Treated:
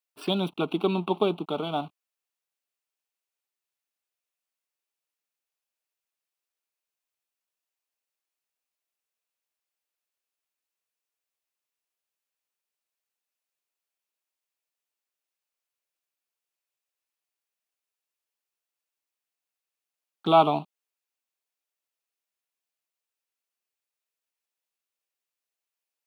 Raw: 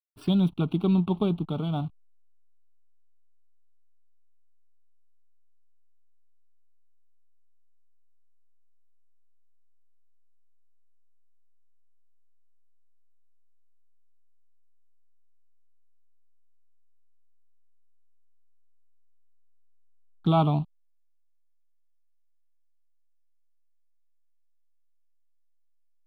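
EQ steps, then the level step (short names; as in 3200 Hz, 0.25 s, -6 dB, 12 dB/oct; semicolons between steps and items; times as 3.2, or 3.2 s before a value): Chebyshev high-pass 450 Hz, order 2; bell 2600 Hz +5 dB 0.25 oct; +7.0 dB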